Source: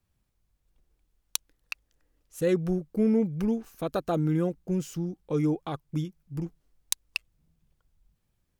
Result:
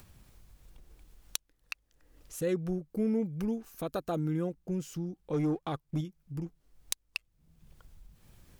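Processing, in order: 2.9–4.29 high shelf 7800 Hz +5 dB; in parallel at -1 dB: compressor, threshold -35 dBFS, peak gain reduction 14.5 dB; 5.33–6.01 on the sum: sample leveller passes 1; upward compressor, threshold -31 dBFS; gain -7.5 dB

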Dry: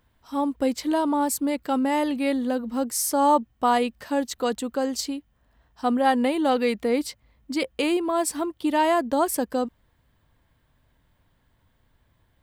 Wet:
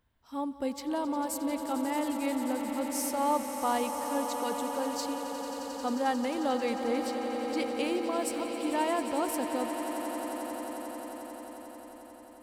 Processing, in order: swelling echo 89 ms, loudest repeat 8, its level -13 dB; gain -9 dB

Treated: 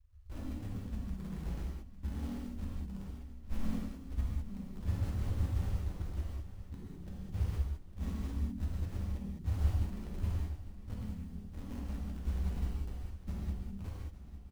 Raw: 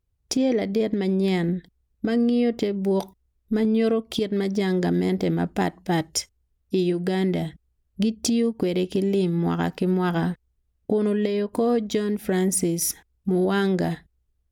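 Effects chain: ending faded out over 1.28 s; inverse Chebyshev low-pass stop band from 530 Hz, stop band 80 dB; comb 3 ms, depth 86%; in parallel at -8 dB: bit-crush 8-bit; on the sum: harmoniser -4 st -9 dB, -3 st -6 dB, +3 st -5 dB; short-mantissa float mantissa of 4-bit; on a send: feedback echo 0.853 s, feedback 58%, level -14.5 dB; on the sum: non-linear reverb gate 0.23 s flat, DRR -5 dB; gain +4.5 dB

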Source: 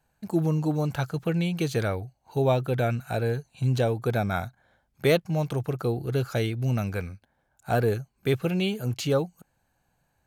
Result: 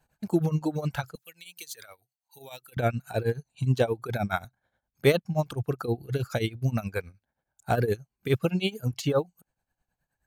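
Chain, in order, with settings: 1.15–2.77 pre-emphasis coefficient 0.97; tremolo triangle 9.5 Hz, depth 80%; reverb removal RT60 1.9 s; gain +4 dB

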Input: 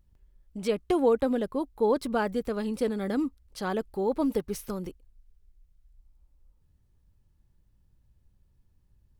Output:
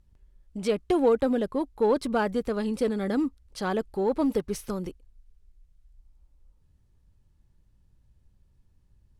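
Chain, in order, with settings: LPF 11000 Hz 12 dB/oct; in parallel at -10 dB: overloaded stage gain 25.5 dB

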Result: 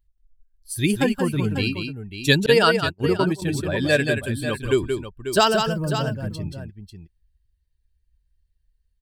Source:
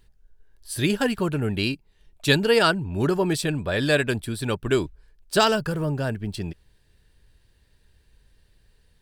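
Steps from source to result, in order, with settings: per-bin expansion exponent 1.5; tapped delay 0.179/0.544 s -6/-10 dB; 2.46–3.42 gate -23 dBFS, range -39 dB; gain +3.5 dB

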